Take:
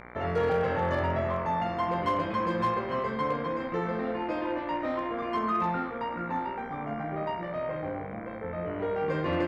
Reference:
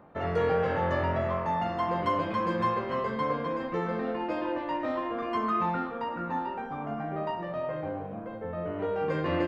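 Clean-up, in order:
clipped peaks rebuilt −20 dBFS
hum removal 59.9 Hz, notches 39

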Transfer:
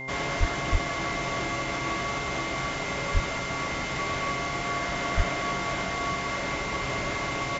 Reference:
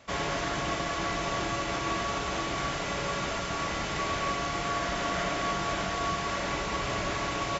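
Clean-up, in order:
hum removal 131.8 Hz, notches 8
notch filter 2,100 Hz, Q 30
high-pass at the plosives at 0:00.39/0:00.71/0:03.13/0:05.16

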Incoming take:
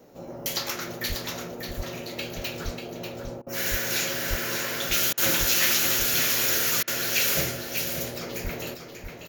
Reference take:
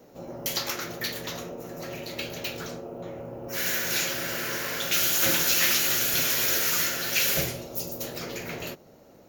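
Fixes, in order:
high-pass at the plosives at 0:01.08/0:01.76/0:02.64/0:03.70/0:04.29/0:05.39/0:08.43
repair the gap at 0:03.42/0:05.13/0:06.83, 45 ms
echo removal 591 ms −7 dB

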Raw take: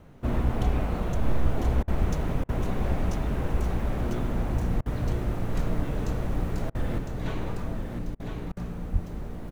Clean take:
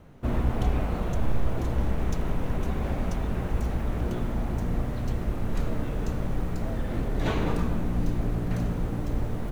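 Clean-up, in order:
0:02.00–0:02.12: high-pass filter 140 Hz 24 dB per octave
0:08.92–0:09.04: high-pass filter 140 Hz 24 dB per octave
repair the gap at 0:01.83/0:02.44/0:04.81/0:06.70/0:08.15/0:08.52, 47 ms
echo removal 1,007 ms −6 dB
level 0 dB, from 0:06.98 +7.5 dB

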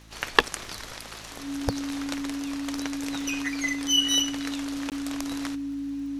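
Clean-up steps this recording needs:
click removal
hum removal 54.3 Hz, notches 6
notch filter 280 Hz, Q 30
repair the gap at 0:04.90, 18 ms

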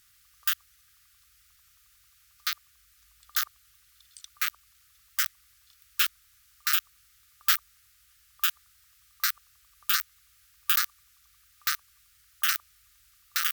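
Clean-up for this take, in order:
clipped peaks rebuilt −10 dBFS

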